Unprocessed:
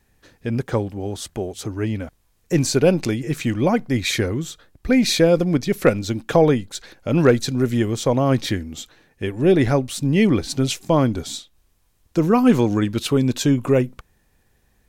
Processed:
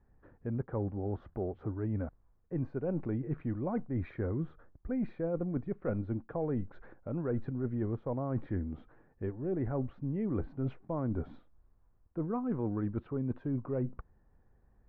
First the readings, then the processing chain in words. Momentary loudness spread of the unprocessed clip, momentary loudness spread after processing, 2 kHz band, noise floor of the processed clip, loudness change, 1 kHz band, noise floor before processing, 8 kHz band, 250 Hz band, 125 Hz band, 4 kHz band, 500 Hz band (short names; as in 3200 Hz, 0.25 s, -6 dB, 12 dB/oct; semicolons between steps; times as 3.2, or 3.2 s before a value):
13 LU, 6 LU, -25.0 dB, -67 dBFS, -16.0 dB, -18.0 dB, -63 dBFS, under -40 dB, -15.5 dB, -13.0 dB, under -40 dB, -17.5 dB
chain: LPF 1400 Hz 24 dB/oct; low shelf 95 Hz +5.5 dB; reverse; compressor 10:1, threshold -24 dBFS, peak gain reduction 15.5 dB; reverse; gain -6.5 dB